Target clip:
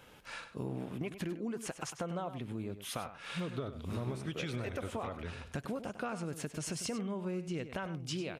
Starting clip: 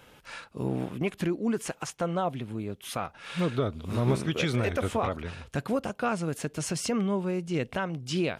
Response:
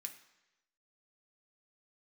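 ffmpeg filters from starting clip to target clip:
-filter_complex "[0:a]acompressor=threshold=-32dB:ratio=6,asplit=2[a][b];[b]adelay=99.13,volume=-11dB,highshelf=f=4k:g=-2.23[c];[a][c]amix=inputs=2:normalize=0,volume=-3dB"

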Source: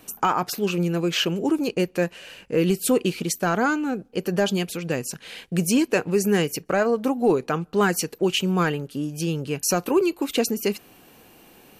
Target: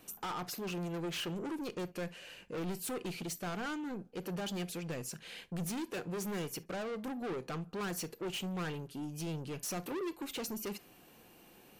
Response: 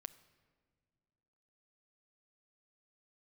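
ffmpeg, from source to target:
-filter_complex "[0:a]asoftclip=type=tanh:threshold=-27.5dB[a];[1:a]atrim=start_sample=2205,atrim=end_sample=3969,asetrate=52920,aresample=44100[b];[a][b]afir=irnorm=-1:irlink=0,volume=-1.5dB"

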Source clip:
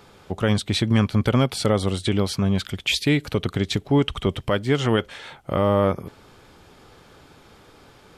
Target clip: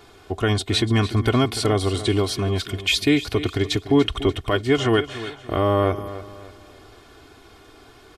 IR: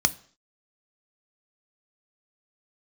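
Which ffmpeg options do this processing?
-af "aecho=1:1:2.8:0.73,aecho=1:1:292|584|876|1168:0.2|0.0738|0.0273|0.0101"

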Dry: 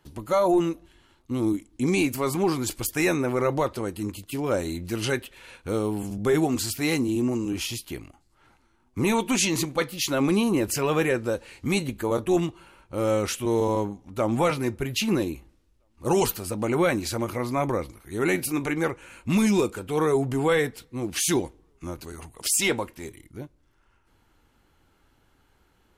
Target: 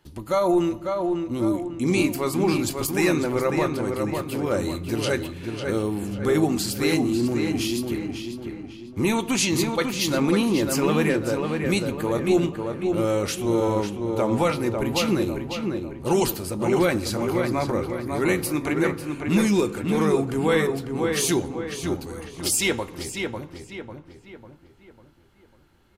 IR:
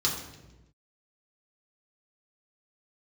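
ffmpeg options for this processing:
-filter_complex "[0:a]asplit=2[a][b];[b]adelay=548,lowpass=f=2.9k:p=1,volume=-4.5dB,asplit=2[c][d];[d]adelay=548,lowpass=f=2.9k:p=1,volume=0.45,asplit=2[e][f];[f]adelay=548,lowpass=f=2.9k:p=1,volume=0.45,asplit=2[g][h];[h]adelay=548,lowpass=f=2.9k:p=1,volume=0.45,asplit=2[i][j];[j]adelay=548,lowpass=f=2.9k:p=1,volume=0.45,asplit=2[k][l];[l]adelay=548,lowpass=f=2.9k:p=1,volume=0.45[m];[a][c][e][g][i][k][m]amix=inputs=7:normalize=0,asplit=2[n][o];[1:a]atrim=start_sample=2205,highshelf=f=12k:g=-9[p];[o][p]afir=irnorm=-1:irlink=0,volume=-20.5dB[q];[n][q]amix=inputs=2:normalize=0"

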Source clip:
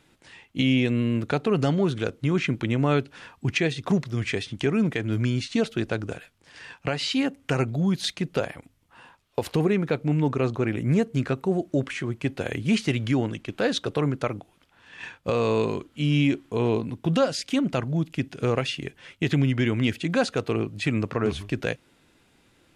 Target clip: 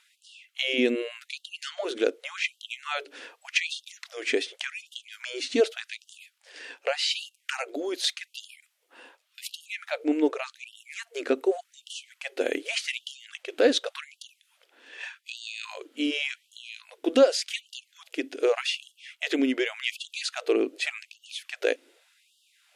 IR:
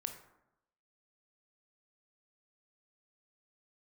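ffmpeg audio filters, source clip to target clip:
-af "equalizer=f=125:t=o:w=1:g=-6,equalizer=f=500:t=o:w=1:g=5,equalizer=f=1k:t=o:w=1:g=-9,afftfilt=real='re*gte(b*sr/1024,230*pow(2800/230,0.5+0.5*sin(2*PI*0.86*pts/sr)))':imag='im*gte(b*sr/1024,230*pow(2800/230,0.5+0.5*sin(2*PI*0.86*pts/sr)))':win_size=1024:overlap=0.75,volume=2.5dB"

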